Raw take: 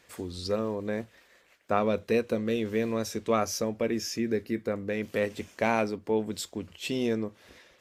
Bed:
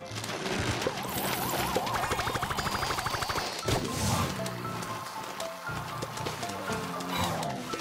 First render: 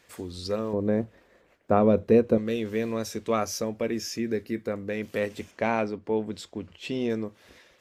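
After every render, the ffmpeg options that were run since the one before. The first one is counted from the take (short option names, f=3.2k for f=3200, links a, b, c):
-filter_complex "[0:a]asettb=1/sr,asplit=3[a][b][c];[a]atrim=end=0.734[d];[b]atrim=start=0.73:end=2.38,asetpts=PTS-STARTPTS,afade=t=in:d=0.004:c=qsin,afade=t=out:st=1.646:d=0.004:c=qsin,tiltshelf=f=1.2k:g=9[e];[c]atrim=start=2.376[f];[d][e]acrossfade=d=0.004:c1=hsin:c2=qsin[g];[g][f]acrossfade=d=0.004:c1=qsin:c2=hsin,asettb=1/sr,asplit=3[h][i][j];[h]atrim=end=5.514[k];[i]atrim=start=5.51:end=7.1,asetpts=PTS-STARTPTS,afade=t=in:d=0.004:c=qsin,afade=t=out:st=1.586:d=0.004:c=qsin,aemphasis=mode=reproduction:type=50fm[l];[j]atrim=start=7.096[m];[k][l]acrossfade=d=0.004:c1=hsin:c2=qsin[n];[n][m]acrossfade=d=0.004:c1=qsin:c2=hsin"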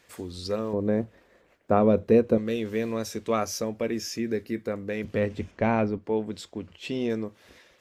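-filter_complex "[0:a]asettb=1/sr,asplit=3[a][b][c];[a]atrim=end=5.044[d];[b]atrim=start=5.04:end=5.98,asetpts=PTS-STARTPTS,afade=t=in:d=0.004:c=qsin,afade=t=out:st=0.936:d=0.004:c=qsin,aemphasis=mode=reproduction:type=bsi[e];[c]atrim=start=5.976[f];[d][e]acrossfade=d=0.004:c1=hsin:c2=qsin[g];[g][f]acrossfade=d=0.004:c1=qsin:c2=hsin"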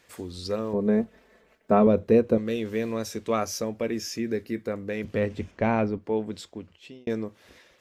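-filter_complex "[0:a]asettb=1/sr,asplit=3[a][b][c];[a]atrim=end=0.744[d];[b]atrim=start=0.74:end=1.87,asetpts=PTS-STARTPTS,afade=t=in:d=0.004:c=qsin,afade=t=out:st=1.126:d=0.004:c=qsin,aecho=1:1:4.6:0.66,atrim=end_sample=49833[e];[c]atrim=start=1.866[f];[d][e]acrossfade=d=0.004:c1=hsin:c2=qsin[g];[g][f]acrossfade=d=0.004:c1=qsin:c2=hsin,asplit=2[h][i];[h]atrim=end=7.07,asetpts=PTS-STARTPTS,afade=t=out:st=6.37:d=0.7[j];[i]atrim=start=7.07,asetpts=PTS-STARTPTS,afade=t=in:d=0.004:c=hsin[k];[j][k]concat=n=2:v=0:a=1"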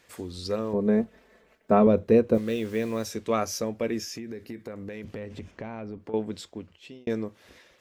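-filter_complex "[0:a]asplit=3[a][b][c];[a]afade=t=out:st=2.33:d=0.02[d];[b]acrusher=bits=7:mix=0:aa=0.5,afade=t=in:st=2.33:d=0.02,afade=t=out:st=3.04:d=0.02[e];[c]afade=t=in:st=3.04:d=0.02[f];[d][e][f]amix=inputs=3:normalize=0,asettb=1/sr,asplit=3[g][h][i];[g]atrim=end=4.034[j];[h]atrim=start=4.03:end=6.14,asetpts=PTS-STARTPTS,afade=t=in:d=0.004:c=qsin,afade=t=out:st=2.106:d=0.004:c=qsin,acompressor=threshold=-33dB:ratio=10:attack=3.2:release=140:knee=1:detection=peak[k];[i]atrim=start=6.136[l];[j][k]acrossfade=d=0.004:c1=hsin:c2=qsin[m];[m][l]acrossfade=d=0.004:c1=qsin:c2=hsin"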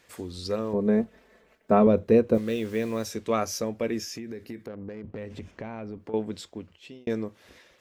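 -filter_complex "[0:a]asettb=1/sr,asplit=3[a][b][c];[a]atrim=end=4.664[d];[b]atrim=start=4.66:end=5.18,asetpts=PTS-STARTPTS,afade=t=in:d=0.004:c=qsin,afade=t=out:st=0.516:d=0.004:c=qsin,adynamicsmooth=sensitivity=3.5:basefreq=740[e];[c]atrim=start=5.176[f];[d][e]acrossfade=d=0.004:c1=hsin:c2=qsin[g];[g][f]acrossfade=d=0.004:c1=qsin:c2=hsin"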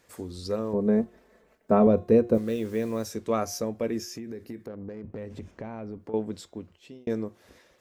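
-af "equalizer=f=2.8k:w=0.79:g=-6.5,bandreject=f=356.4:t=h:w=4,bandreject=f=712.8:t=h:w=4,bandreject=f=1.0692k:t=h:w=4,bandreject=f=1.4256k:t=h:w=4,bandreject=f=1.782k:t=h:w=4,bandreject=f=2.1384k:t=h:w=4,bandreject=f=2.4948k:t=h:w=4,bandreject=f=2.8512k:t=h:w=4,bandreject=f=3.2076k:t=h:w=4,bandreject=f=3.564k:t=h:w=4,bandreject=f=3.9204k:t=h:w=4"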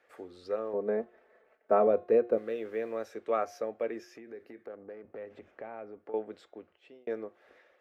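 -filter_complex "[0:a]acrossover=split=390 2700:gain=0.0631 1 0.0794[a][b][c];[a][b][c]amix=inputs=3:normalize=0,bandreject=f=990:w=5.1"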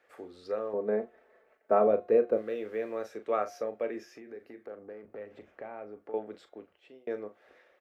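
-filter_complex "[0:a]asplit=2[a][b];[b]adelay=38,volume=-10.5dB[c];[a][c]amix=inputs=2:normalize=0"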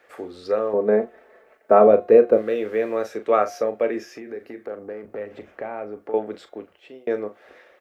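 -af "volume=11dB,alimiter=limit=-3dB:level=0:latency=1"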